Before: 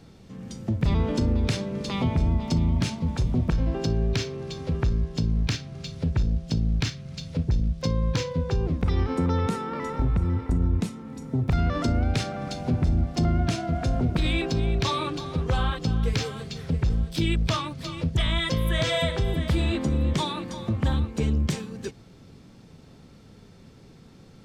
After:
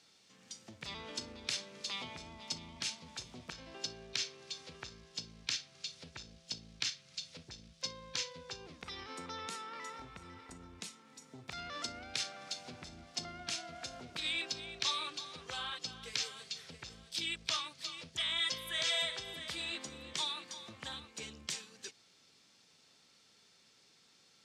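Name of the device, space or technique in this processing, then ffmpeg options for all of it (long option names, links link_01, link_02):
piezo pickup straight into a mixer: -af "lowpass=6100,aderivative,volume=3.5dB"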